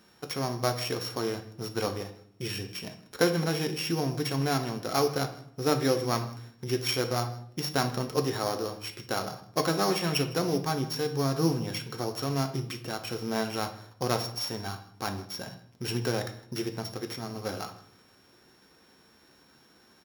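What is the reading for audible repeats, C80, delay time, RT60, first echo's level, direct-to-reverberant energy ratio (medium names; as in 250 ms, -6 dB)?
1, 14.0 dB, 158 ms, 0.60 s, -21.5 dB, 6.0 dB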